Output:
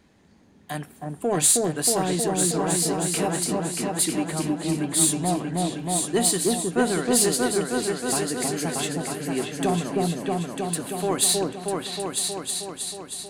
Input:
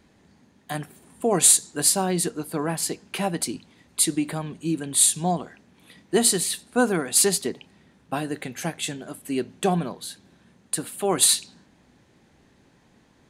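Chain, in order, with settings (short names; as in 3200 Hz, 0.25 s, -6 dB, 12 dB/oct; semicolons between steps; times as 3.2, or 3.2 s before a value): repeats that get brighter 0.316 s, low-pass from 750 Hz, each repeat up 2 oct, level 0 dB; in parallel at -3.5 dB: soft clip -20.5 dBFS, distortion -9 dB; on the sum: gain -5 dB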